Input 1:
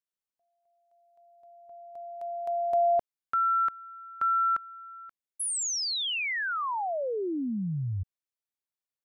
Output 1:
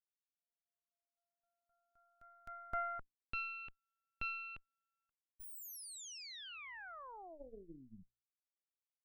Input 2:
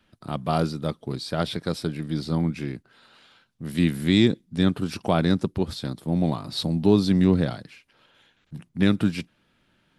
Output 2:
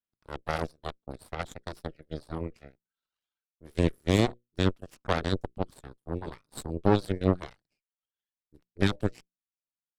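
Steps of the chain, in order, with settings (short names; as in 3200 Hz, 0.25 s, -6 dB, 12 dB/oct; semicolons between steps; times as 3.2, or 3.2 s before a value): reverb removal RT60 1.4 s; notches 60/120/180/240/300 Hz; added harmonics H 2 -9 dB, 3 -24 dB, 6 -16 dB, 7 -19 dB, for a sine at -6 dBFS; gain -4 dB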